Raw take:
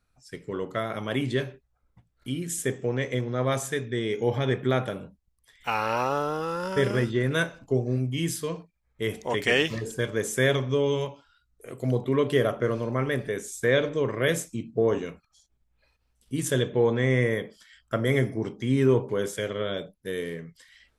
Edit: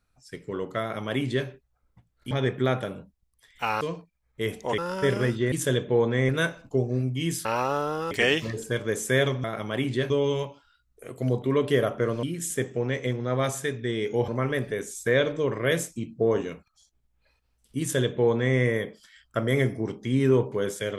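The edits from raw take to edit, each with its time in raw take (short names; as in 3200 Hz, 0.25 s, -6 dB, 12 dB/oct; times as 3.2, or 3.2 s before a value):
0.81–1.47 copy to 10.72
2.31–4.36 move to 12.85
5.86–6.52 swap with 8.42–9.39
16.37–17.14 copy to 7.26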